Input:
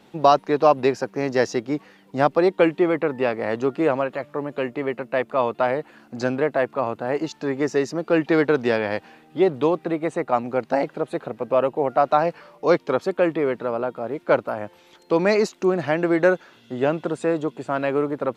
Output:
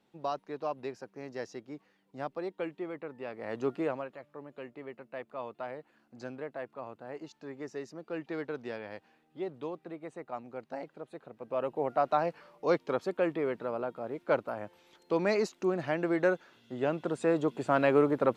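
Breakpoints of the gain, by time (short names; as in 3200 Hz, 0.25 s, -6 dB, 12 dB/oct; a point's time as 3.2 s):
3.24 s -19 dB
3.69 s -8.5 dB
4.17 s -18.5 dB
11.3 s -18.5 dB
11.78 s -9.5 dB
16.84 s -9.5 dB
17.66 s -2 dB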